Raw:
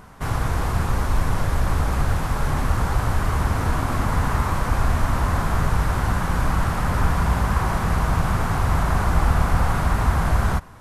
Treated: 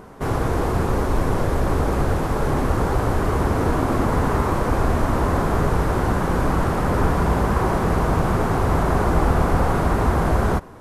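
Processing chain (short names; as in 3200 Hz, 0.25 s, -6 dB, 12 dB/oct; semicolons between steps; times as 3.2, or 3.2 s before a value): bell 390 Hz +13.5 dB 1.7 oct; gain -2 dB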